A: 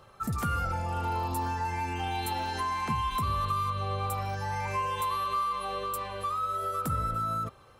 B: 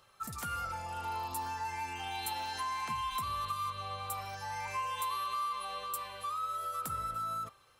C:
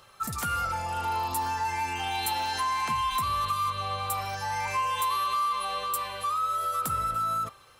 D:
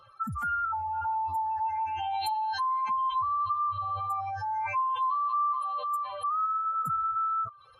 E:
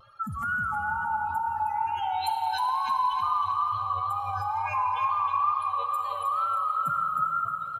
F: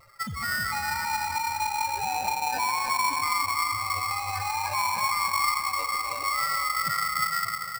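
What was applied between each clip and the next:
tilt shelf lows -7.5 dB, about 1.3 kHz; de-hum 393.4 Hz, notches 38; dynamic bell 850 Hz, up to +5 dB, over -43 dBFS, Q 1.2; trim -7.5 dB
saturation -28 dBFS, distortion -24 dB; trim +9 dB
spectral contrast enhancement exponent 2.6
vibrato 2.2 Hz 80 cents; feedback delay 313 ms, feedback 38%, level -7 dB; plate-style reverb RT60 4.6 s, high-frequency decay 0.95×, DRR 4.5 dB
sample-rate reducer 3.3 kHz, jitter 0%

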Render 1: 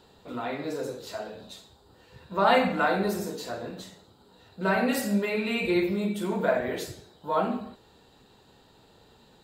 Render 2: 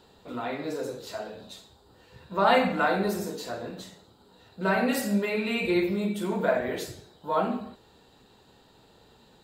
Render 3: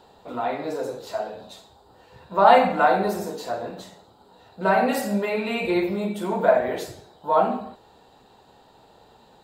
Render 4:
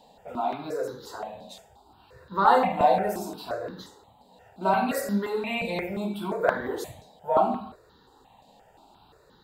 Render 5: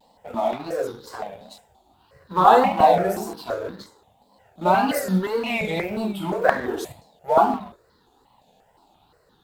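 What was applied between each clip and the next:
de-hum 46.96 Hz, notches 3
peaking EQ 770 Hz +9.5 dB 1.2 oct
stepped phaser 5.7 Hz 370–2500 Hz
companding laws mixed up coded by A; wow and flutter 140 cents; trim +5.5 dB

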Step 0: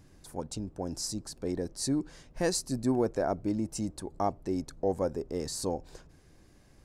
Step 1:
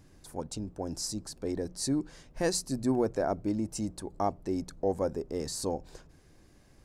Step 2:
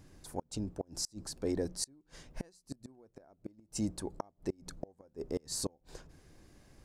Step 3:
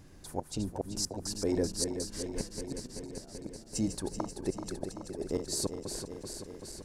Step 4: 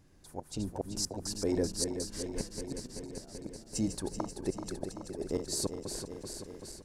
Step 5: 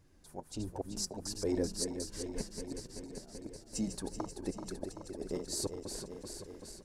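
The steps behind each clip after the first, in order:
hum notches 60/120/180 Hz
inverted gate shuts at -23 dBFS, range -32 dB
backward echo that repeats 192 ms, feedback 84%, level -8 dB; trim +3 dB
level rider gain up to 8 dB; trim -8.5 dB
flange 1.4 Hz, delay 1.8 ms, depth 3.7 ms, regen -42%; trim +1 dB

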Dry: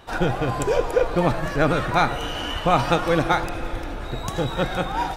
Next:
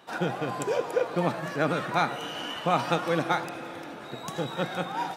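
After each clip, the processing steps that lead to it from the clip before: Chebyshev high-pass 160 Hz, order 3; trim -5.5 dB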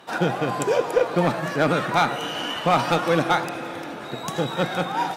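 one-sided clip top -18 dBFS; trim +6.5 dB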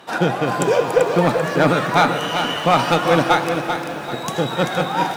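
bit-crushed delay 389 ms, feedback 35%, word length 8-bit, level -7 dB; trim +4 dB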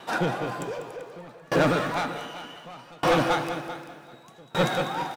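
saturation -13 dBFS, distortion -12 dB; delay 195 ms -8.5 dB; sawtooth tremolo in dB decaying 0.66 Hz, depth 30 dB

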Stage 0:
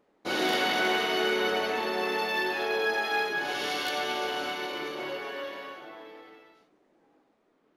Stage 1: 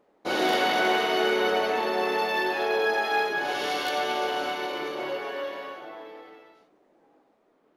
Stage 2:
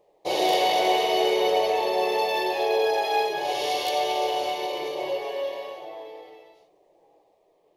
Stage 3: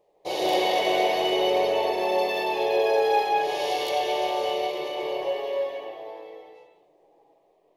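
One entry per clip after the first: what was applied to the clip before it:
peaking EQ 650 Hz +5.5 dB 1.7 oct
static phaser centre 590 Hz, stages 4; trim +4.5 dB
reverberation, pre-delay 151 ms, DRR -1 dB; trim -3.5 dB

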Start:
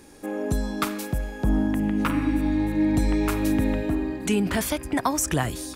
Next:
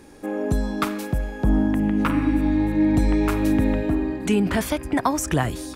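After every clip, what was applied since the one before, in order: treble shelf 3.6 kHz -7 dB; trim +3 dB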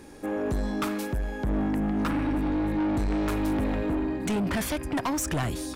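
saturation -23.5 dBFS, distortion -8 dB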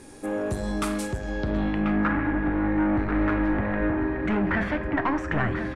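delay 1038 ms -8.5 dB; low-pass sweep 9.6 kHz -> 1.8 kHz, 0.96–2.04 s; reverberation RT60 0.80 s, pre-delay 8 ms, DRR 8 dB

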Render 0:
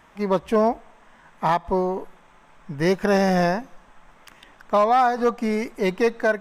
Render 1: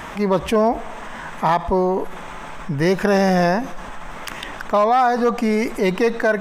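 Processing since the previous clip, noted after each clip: level flattener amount 50%; trim +1.5 dB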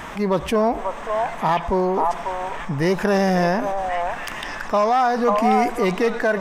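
in parallel at -10.5 dB: saturation -23 dBFS, distortion -6 dB; on the sum: repeats whose band climbs or falls 542 ms, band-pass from 860 Hz, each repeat 1.4 oct, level -0.5 dB; trim -3 dB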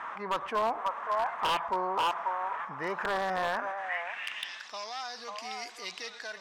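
wow and flutter 24 cents; band-pass sweep 1.2 kHz -> 4.6 kHz, 3.48–4.77 s; wavefolder -22 dBFS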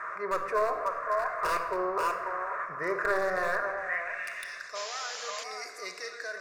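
static phaser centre 850 Hz, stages 6; on a send at -5.5 dB: reverberation RT60 1.4 s, pre-delay 5 ms; on the sum: painted sound noise, 4.75–5.44 s, 440–7400 Hz -45 dBFS; trim +4 dB

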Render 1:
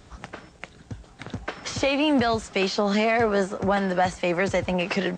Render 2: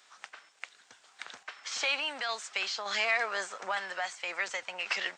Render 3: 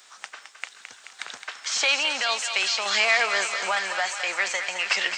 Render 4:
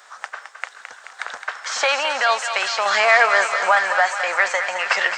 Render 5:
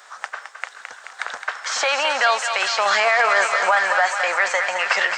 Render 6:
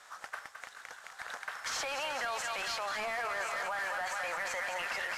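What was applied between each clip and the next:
high-pass 1.3 kHz 12 dB/octave; random-step tremolo
treble shelf 5.2 kHz +7.5 dB; on a send: thinning echo 215 ms, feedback 78%, high-pass 670 Hz, level -8 dB; on the sum: trim +6.5 dB
high-order bell 930 Hz +11.5 dB 2.3 oct; trim -1 dB
peak limiter -8.5 dBFS, peak gain reduction 6.5 dB; trim +1.5 dB
CVSD coder 64 kbps; peak limiter -18 dBFS, peak gain reduction 11 dB; trim -9 dB

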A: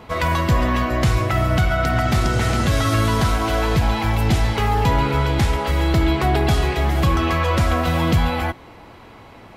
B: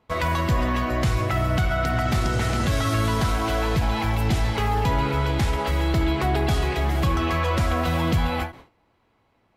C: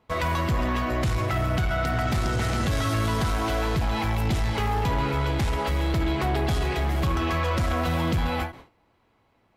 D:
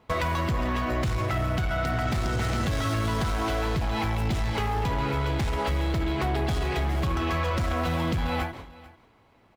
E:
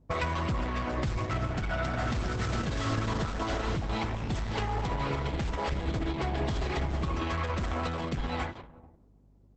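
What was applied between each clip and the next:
gate with hold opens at -29 dBFS; in parallel at +1 dB: peak limiter -15 dBFS, peak gain reduction 7 dB; on the sum: endings held to a fixed fall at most 180 dB/s; trim -8.5 dB
saturation -18.5 dBFS, distortion -17 dB
median filter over 3 samples; compression 6:1, threshold -30 dBFS, peak gain reduction 8.5 dB; delay 443 ms -20 dB; trim +5.5 dB
level-controlled noise filter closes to 320 Hz, open at -26.5 dBFS; hum 50 Hz, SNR 32 dB; trim -3 dB; Opus 10 kbps 48 kHz

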